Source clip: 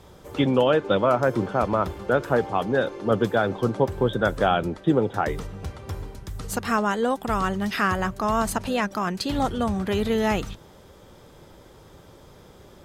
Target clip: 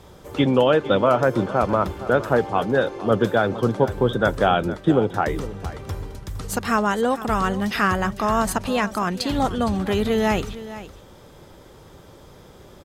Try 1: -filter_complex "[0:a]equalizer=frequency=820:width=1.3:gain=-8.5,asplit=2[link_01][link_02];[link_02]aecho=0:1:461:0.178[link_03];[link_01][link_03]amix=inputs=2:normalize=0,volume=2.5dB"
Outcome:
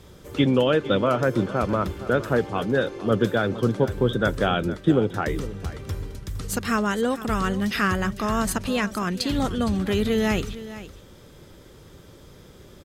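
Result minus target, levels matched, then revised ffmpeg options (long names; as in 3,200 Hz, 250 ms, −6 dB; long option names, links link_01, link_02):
1,000 Hz band −3.0 dB
-filter_complex "[0:a]asplit=2[link_01][link_02];[link_02]aecho=0:1:461:0.178[link_03];[link_01][link_03]amix=inputs=2:normalize=0,volume=2.5dB"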